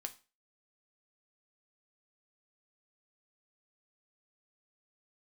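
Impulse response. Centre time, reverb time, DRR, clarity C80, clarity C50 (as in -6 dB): 6 ms, 0.35 s, 6.0 dB, 22.0 dB, 17.0 dB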